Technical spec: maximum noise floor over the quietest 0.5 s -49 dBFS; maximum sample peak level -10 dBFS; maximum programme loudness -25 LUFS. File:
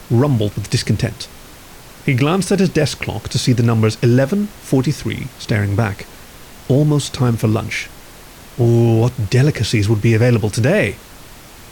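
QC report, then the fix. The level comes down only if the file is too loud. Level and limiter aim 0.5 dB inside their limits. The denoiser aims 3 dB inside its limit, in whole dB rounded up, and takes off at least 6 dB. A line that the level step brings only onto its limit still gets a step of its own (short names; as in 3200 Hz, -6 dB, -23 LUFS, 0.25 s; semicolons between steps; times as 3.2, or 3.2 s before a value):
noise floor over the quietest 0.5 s -39 dBFS: fail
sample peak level -4.5 dBFS: fail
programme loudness -16.5 LUFS: fail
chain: denoiser 6 dB, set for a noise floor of -39 dBFS; gain -9 dB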